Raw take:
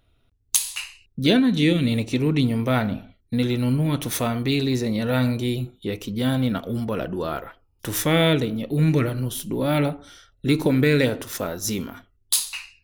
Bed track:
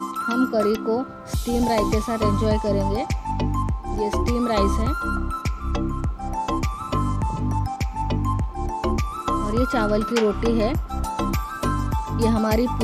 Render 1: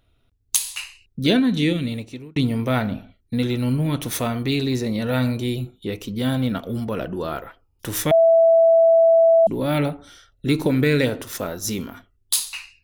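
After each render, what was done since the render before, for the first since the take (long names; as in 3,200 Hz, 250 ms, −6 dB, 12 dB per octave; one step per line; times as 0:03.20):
0:01.55–0:02.36: fade out
0:08.11–0:09.47: beep over 660 Hz −10.5 dBFS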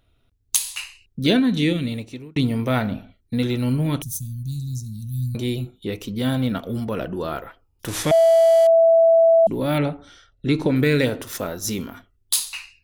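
0:04.02–0:05.35: elliptic band-stop filter 150–6,200 Hz, stop band 60 dB
0:07.88–0:08.67: linear delta modulator 64 kbit/s, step −26 dBFS
0:09.78–0:10.76: high-frequency loss of the air 66 metres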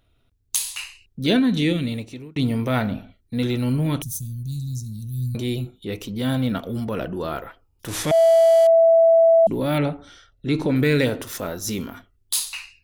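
transient designer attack −4 dB, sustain +1 dB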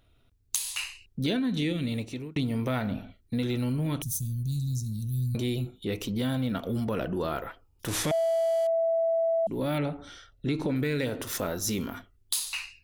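downward compressor 5 to 1, threshold −26 dBFS, peak gain reduction 12 dB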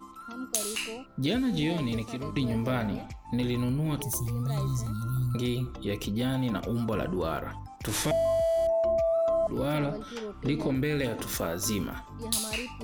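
mix in bed track −18 dB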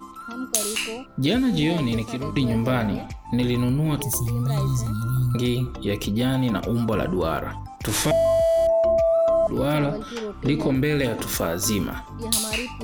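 level +6.5 dB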